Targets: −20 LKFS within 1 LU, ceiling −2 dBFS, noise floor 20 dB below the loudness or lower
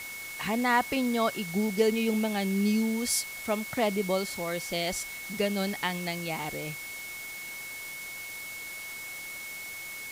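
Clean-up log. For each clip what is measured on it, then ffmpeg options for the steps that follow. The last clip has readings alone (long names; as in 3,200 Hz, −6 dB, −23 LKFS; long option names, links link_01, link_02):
interfering tone 2,200 Hz; level of the tone −39 dBFS; background noise floor −40 dBFS; target noise floor −51 dBFS; integrated loudness −30.5 LKFS; sample peak −12.5 dBFS; target loudness −20.0 LKFS
→ -af "bandreject=frequency=2200:width=30"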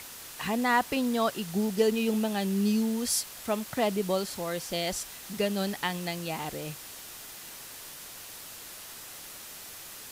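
interfering tone none found; background noise floor −45 dBFS; target noise floor −50 dBFS
→ -af "afftdn=noise_reduction=6:noise_floor=-45"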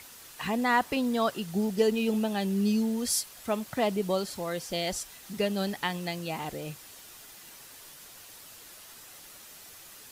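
background noise floor −50 dBFS; integrated loudness −29.5 LKFS; sample peak −12.5 dBFS; target loudness −20.0 LKFS
→ -af "volume=9.5dB"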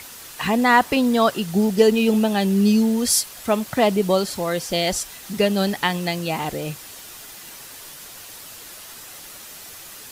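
integrated loudness −20.0 LKFS; sample peak −3.0 dBFS; background noise floor −40 dBFS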